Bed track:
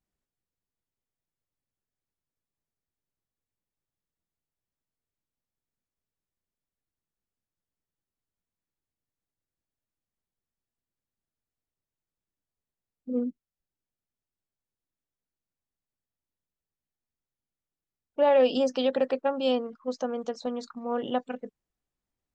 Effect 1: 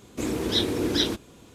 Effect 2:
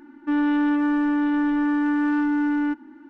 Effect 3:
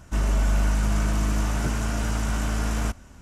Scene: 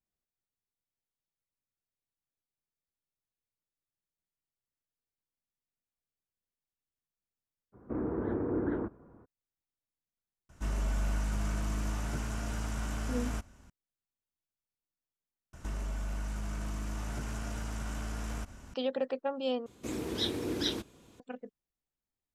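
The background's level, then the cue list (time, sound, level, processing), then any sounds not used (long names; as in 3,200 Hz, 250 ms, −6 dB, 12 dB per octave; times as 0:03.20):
bed track −7 dB
0:07.72: mix in 1 −5.5 dB, fades 0.02 s + Butterworth low-pass 1,500 Hz
0:10.49: mix in 3 −10 dB
0:15.53: overwrite with 3 −2.5 dB + downward compressor, threshold −31 dBFS
0:19.66: overwrite with 1 −8.5 dB
not used: 2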